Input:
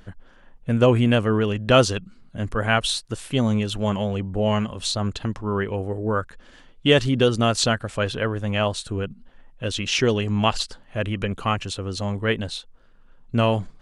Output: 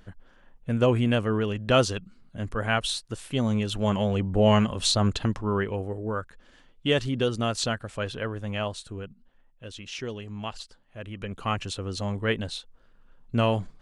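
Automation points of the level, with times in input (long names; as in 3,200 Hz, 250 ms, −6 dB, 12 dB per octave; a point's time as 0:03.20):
0:03.36 −5 dB
0:04.42 +2 dB
0:05.13 +2 dB
0:06.15 −7 dB
0:08.53 −7 dB
0:09.65 −14.5 dB
0:10.97 −14.5 dB
0:11.58 −3.5 dB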